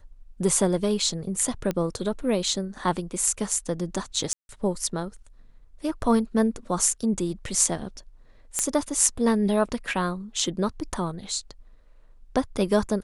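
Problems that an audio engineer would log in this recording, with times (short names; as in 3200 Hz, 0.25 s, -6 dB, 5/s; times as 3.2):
1.71 pop -14 dBFS
4.33–4.49 gap 0.161 s
8.59 pop -9 dBFS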